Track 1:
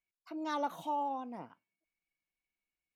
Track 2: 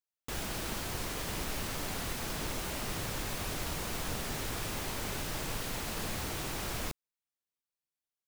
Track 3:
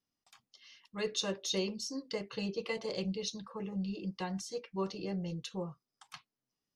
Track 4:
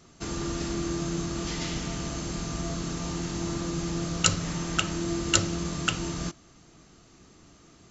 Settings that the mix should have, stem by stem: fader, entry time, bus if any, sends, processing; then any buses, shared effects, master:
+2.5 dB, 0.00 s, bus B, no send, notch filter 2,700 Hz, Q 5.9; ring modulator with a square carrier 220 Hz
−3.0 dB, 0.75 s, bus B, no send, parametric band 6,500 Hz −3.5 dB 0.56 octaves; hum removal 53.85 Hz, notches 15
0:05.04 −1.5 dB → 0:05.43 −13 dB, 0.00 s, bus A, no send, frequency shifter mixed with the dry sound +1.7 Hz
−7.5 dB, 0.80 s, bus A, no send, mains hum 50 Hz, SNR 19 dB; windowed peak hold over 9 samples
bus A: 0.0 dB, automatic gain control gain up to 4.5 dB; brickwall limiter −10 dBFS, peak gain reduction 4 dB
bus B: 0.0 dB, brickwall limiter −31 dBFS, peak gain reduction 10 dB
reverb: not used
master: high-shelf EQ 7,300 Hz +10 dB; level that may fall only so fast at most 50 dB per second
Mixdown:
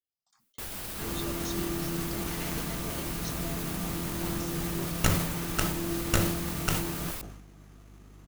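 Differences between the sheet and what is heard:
stem 1: muted
stem 2: entry 0.75 s → 0.30 s
stem 3 −1.5 dB → −11.0 dB

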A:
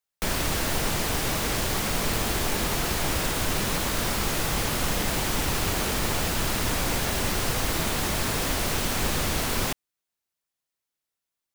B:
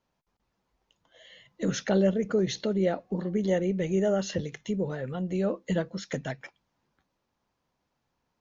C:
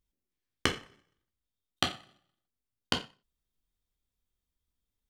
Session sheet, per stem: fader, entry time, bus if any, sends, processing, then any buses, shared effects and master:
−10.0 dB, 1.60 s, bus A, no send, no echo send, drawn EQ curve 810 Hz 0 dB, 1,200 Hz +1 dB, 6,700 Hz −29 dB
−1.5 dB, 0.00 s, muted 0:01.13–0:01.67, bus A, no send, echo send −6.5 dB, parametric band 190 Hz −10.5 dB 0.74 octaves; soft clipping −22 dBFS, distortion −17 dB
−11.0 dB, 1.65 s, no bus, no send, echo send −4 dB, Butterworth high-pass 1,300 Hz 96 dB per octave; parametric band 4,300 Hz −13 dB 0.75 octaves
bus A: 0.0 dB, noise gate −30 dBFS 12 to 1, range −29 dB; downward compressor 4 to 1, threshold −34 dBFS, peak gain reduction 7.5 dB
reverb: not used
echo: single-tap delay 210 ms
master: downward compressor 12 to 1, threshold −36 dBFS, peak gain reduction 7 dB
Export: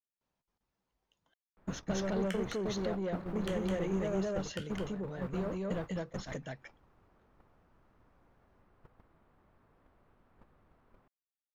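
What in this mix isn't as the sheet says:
stem A: entry 1.60 s → 1.35 s
stem B: missing parametric band 190 Hz −10.5 dB 0.74 octaves
master: missing downward compressor 12 to 1, threshold −36 dBFS, peak gain reduction 7 dB

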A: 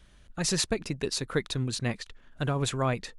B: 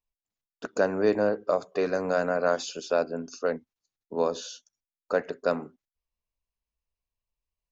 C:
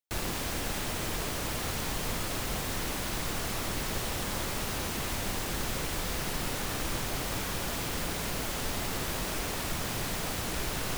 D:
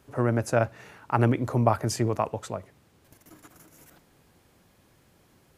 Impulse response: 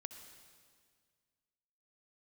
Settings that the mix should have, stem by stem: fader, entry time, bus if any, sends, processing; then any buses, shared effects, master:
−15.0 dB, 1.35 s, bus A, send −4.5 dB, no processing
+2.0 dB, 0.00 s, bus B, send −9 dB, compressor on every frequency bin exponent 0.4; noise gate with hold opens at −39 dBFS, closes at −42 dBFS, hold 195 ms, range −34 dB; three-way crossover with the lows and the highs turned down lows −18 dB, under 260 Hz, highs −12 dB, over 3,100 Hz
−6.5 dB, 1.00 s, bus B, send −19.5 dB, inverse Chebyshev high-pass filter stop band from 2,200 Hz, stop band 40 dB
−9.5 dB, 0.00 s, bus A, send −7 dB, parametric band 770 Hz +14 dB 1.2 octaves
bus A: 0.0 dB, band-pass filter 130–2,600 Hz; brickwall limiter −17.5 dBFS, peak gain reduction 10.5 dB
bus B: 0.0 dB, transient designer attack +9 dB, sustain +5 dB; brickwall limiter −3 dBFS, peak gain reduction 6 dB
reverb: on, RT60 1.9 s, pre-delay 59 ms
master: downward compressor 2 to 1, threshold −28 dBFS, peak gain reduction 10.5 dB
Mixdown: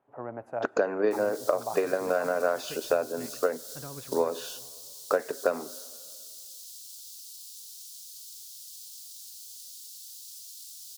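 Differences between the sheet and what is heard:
stem B: missing compressor on every frequency bin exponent 0.4
stem D −9.5 dB → −20.0 dB

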